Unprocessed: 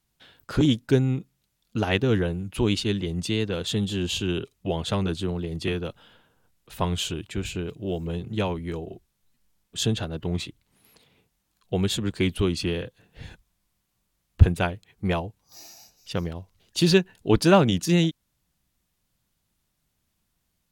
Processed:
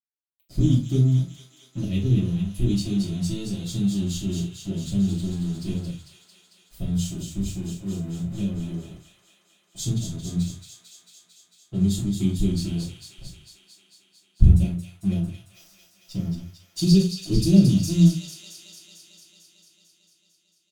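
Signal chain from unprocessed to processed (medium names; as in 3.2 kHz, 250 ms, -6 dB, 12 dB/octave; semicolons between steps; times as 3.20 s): Chebyshev band-stop 220–5500 Hz, order 2; crossover distortion -47.5 dBFS; doubling 41 ms -10.5 dB; feedback echo behind a high-pass 224 ms, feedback 74%, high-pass 1.5 kHz, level -5.5 dB; reverberation RT60 0.30 s, pre-delay 3 ms, DRR -7.5 dB; trim -6.5 dB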